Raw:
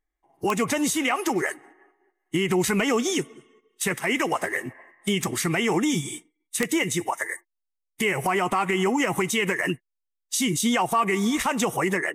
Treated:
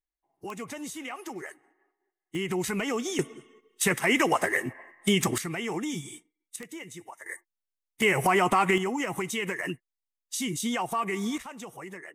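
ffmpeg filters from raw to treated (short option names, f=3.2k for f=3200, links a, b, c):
-af "asetnsamples=n=441:p=0,asendcmd='2.35 volume volume -7dB;3.19 volume volume 1dB;5.38 volume volume -9dB;6.56 volume volume -17.5dB;7.26 volume volume -6.5dB;8.02 volume volume 1dB;8.78 volume volume -7dB;11.38 volume volume -17.5dB',volume=-14dB"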